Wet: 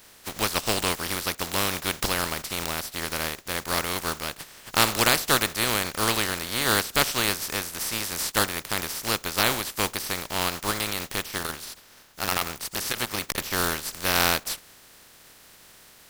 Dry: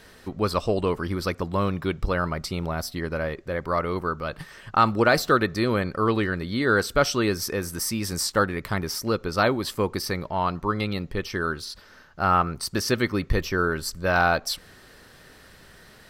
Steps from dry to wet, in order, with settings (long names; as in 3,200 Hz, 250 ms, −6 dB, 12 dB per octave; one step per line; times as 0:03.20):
compressing power law on the bin magnitudes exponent 0.26
0:11.38–0:13.38: saturating transformer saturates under 1,800 Hz
level −1.5 dB